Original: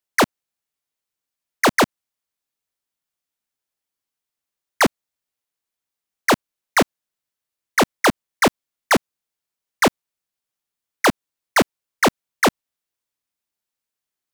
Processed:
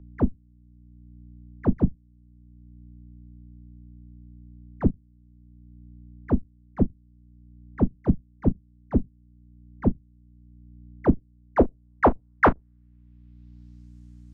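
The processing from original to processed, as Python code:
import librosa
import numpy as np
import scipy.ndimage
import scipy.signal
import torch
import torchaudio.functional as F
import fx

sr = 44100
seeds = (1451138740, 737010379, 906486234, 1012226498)

p1 = fx.octave_divider(x, sr, octaves=2, level_db=-1.0)
p2 = fx.filter_sweep_lowpass(p1, sr, from_hz=190.0, to_hz=7200.0, start_s=10.74, end_s=13.97, q=1.4)
p3 = p2 + fx.room_early_taps(p2, sr, ms=(16, 37), db=(-14.5, -17.5), dry=0)
p4 = fx.add_hum(p3, sr, base_hz=60, snr_db=30)
y = fx.band_squash(p4, sr, depth_pct=40)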